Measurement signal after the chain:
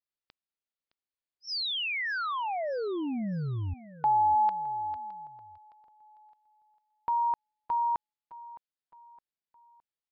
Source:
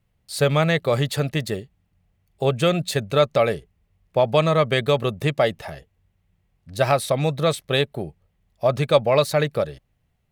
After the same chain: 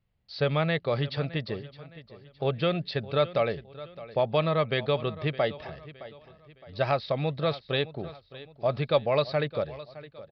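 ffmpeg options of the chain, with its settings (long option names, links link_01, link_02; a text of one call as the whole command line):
ffmpeg -i in.wav -af "aresample=11025,aresample=44100,aecho=1:1:614|1228|1842:0.141|0.0565|0.0226,volume=-7dB" out.wav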